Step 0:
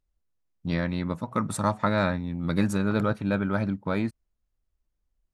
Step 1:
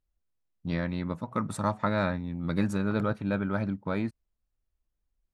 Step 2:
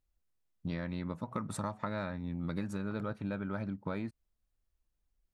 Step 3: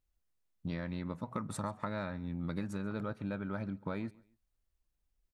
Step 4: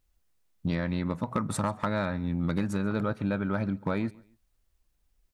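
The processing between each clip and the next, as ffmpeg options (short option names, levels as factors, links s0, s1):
-af "highshelf=f=5300:g=-6,volume=0.708"
-af "acompressor=threshold=0.0224:ratio=6"
-af "aecho=1:1:138|276:0.0668|0.0201,volume=0.891"
-af "asoftclip=type=hard:threshold=0.0447,volume=2.82"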